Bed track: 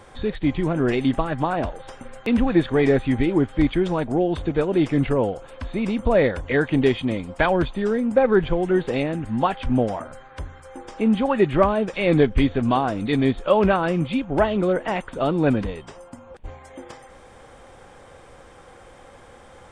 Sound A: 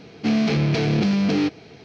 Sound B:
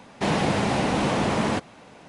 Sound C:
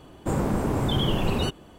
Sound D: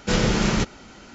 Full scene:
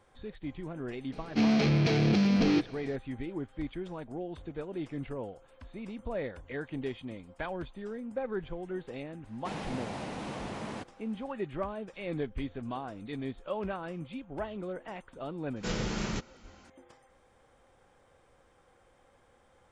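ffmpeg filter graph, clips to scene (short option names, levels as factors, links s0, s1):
-filter_complex "[0:a]volume=0.133[s0];[1:a]atrim=end=1.84,asetpts=PTS-STARTPTS,volume=0.562,afade=t=in:d=0.004:c=hsin,afade=t=out:st=1.836:d=0.004:c=hsin,adelay=1120[s1];[2:a]atrim=end=2.08,asetpts=PTS-STARTPTS,volume=0.168,afade=t=in:d=0.004:c=hsin,afade=t=out:st=2.076:d=0.004:c=hsin,adelay=9240[s2];[4:a]atrim=end=1.14,asetpts=PTS-STARTPTS,volume=0.237,afade=t=in:d=0.004:c=hsin,afade=t=out:st=1.136:d=0.004:c=hsin,adelay=686196S[s3];[s0][s1][s2][s3]amix=inputs=4:normalize=0"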